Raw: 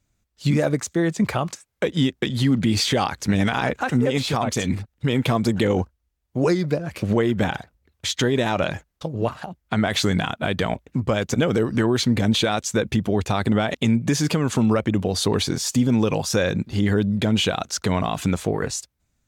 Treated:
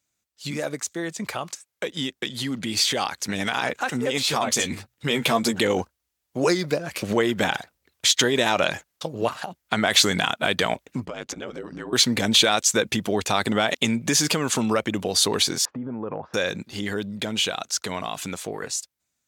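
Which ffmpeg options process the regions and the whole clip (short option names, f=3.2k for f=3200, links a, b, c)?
-filter_complex "[0:a]asettb=1/sr,asplit=3[a][b][c];[a]atrim=end=4.234[d];[b]atrim=start=4.23:end=5.58,asetpts=PTS-STARTPTS,afade=t=in:d=0.004:c=qsin,afade=t=out:st=1.346:d=0.004:c=qsin,bandreject=f=60:t=h:w=6,bandreject=f=120:t=h:w=6,asplit=2[e][f];[f]adelay=13,volume=-7dB[g];[e][g]amix=inputs=2:normalize=0,atrim=end_sample=59535[h];[c]atrim=start=5.576[i];[d][h]acrossfade=d=0.004:c1=hsin:c2=qsin[j];[j][i]acrossfade=d=0.004:c1=qsin:c2=hsin,asettb=1/sr,asplit=3[k][l][m];[k]atrim=end=11.054[n];[l]atrim=start=11.05:end=11.93,asetpts=PTS-STARTPTS,afade=t=in:d=0.004:c=qsin,afade=t=out:st=0.876:d=0.004:c=qsin,aemphasis=mode=reproduction:type=50fm,acompressor=threshold=-26dB:ratio=8:attack=3.2:release=140:knee=1:detection=peak,aeval=exprs='val(0)*sin(2*PI*49*n/s)':c=same[o];[m]atrim=start=11.926[p];[n][o]acrossfade=d=0.004:c1=hsin:c2=qsin[q];[q][p]acrossfade=d=0.004:c1=qsin:c2=hsin,asettb=1/sr,asplit=3[r][s][t];[r]atrim=end=15.654[u];[s]atrim=start=15.65:end=16.34,asetpts=PTS-STARTPTS,afade=t=in:d=0.004:c=qsin,afade=t=out:st=0.686:d=0.004:c=qsin,lowpass=f=1.4k:w=0.5412,lowpass=f=1.4k:w=1.3066,acompressor=threshold=-21dB:ratio=4:attack=3.2:release=140:knee=1:detection=peak[v];[t]atrim=start=16.336[w];[u][v]acrossfade=d=0.004:c1=hsin:c2=qsin[x];[x][w]acrossfade=d=0.004:c1=qsin:c2=hsin,dynaudnorm=f=500:g=17:m=11.5dB,highpass=f=400:p=1,highshelf=f=2.8k:g=7.5,volume=-5.5dB"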